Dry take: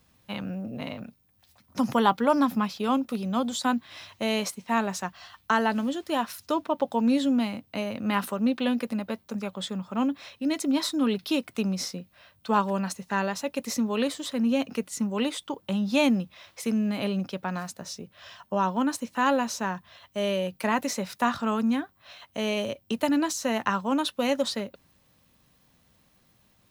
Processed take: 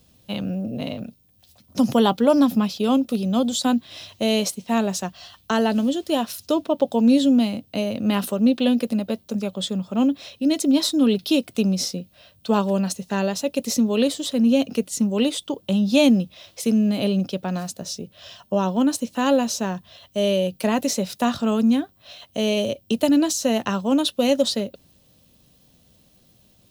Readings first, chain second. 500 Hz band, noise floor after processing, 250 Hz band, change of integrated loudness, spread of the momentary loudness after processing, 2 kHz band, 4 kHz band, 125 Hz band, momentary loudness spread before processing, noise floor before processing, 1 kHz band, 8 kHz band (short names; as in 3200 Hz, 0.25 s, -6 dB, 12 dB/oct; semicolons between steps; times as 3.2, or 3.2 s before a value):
+6.5 dB, -58 dBFS, +7.0 dB, +6.0 dB, 11 LU, -0.5 dB, +6.5 dB, +7.0 dB, 12 LU, -65 dBFS, -0.5 dB, +7.0 dB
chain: band shelf 1400 Hz -9.5 dB; gain +7 dB